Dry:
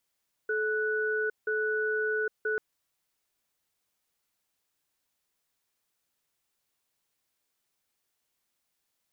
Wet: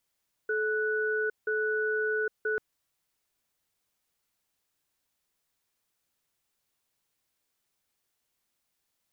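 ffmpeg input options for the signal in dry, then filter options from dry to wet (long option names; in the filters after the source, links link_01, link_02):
-f lavfi -i "aevalsrc='0.0355*(sin(2*PI*432*t)+sin(2*PI*1480*t))*clip(min(mod(t,0.98),0.81-mod(t,0.98))/0.005,0,1)':duration=2.09:sample_rate=44100"
-af "lowshelf=frequency=170:gain=3.5"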